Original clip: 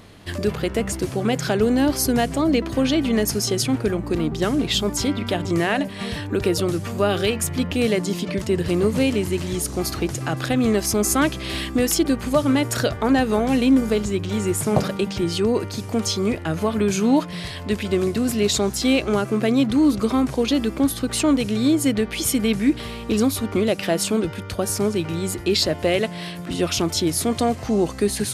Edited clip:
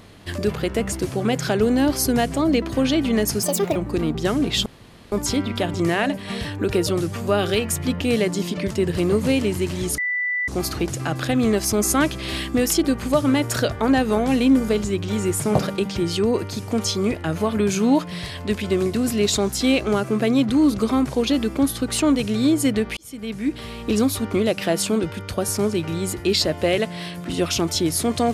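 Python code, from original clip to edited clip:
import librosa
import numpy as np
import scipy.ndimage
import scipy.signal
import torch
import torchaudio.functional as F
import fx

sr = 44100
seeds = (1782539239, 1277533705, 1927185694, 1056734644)

y = fx.edit(x, sr, fx.speed_span(start_s=3.43, length_s=0.5, speed=1.52),
    fx.insert_room_tone(at_s=4.83, length_s=0.46),
    fx.insert_tone(at_s=9.69, length_s=0.5, hz=1980.0, db=-20.5),
    fx.fade_in_span(start_s=22.18, length_s=0.91), tone=tone)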